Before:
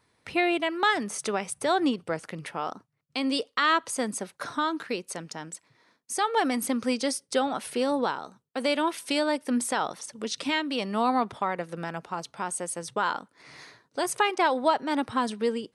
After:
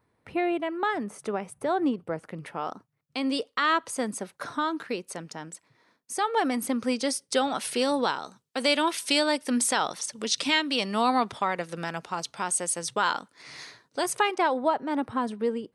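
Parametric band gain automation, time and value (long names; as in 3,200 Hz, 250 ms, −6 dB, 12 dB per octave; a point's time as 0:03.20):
parametric band 5,700 Hz 2.8 octaves
0:02.17 −14.5 dB
0:02.68 −3 dB
0:06.79 −3 dB
0:07.62 +7.5 dB
0:13.60 +7.5 dB
0:14.30 −1.5 dB
0:14.68 −11 dB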